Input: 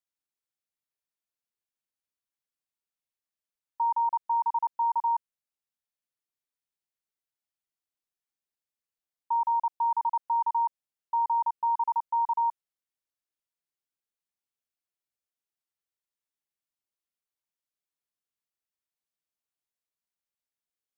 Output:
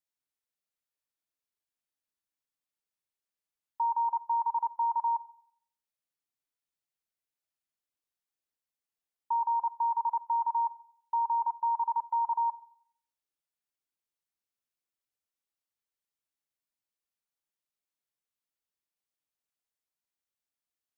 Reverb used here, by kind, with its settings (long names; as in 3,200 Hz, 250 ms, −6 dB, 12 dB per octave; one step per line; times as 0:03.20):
feedback delay network reverb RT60 0.63 s, low-frequency decay 0.85×, high-frequency decay 0.85×, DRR 15.5 dB
level −1.5 dB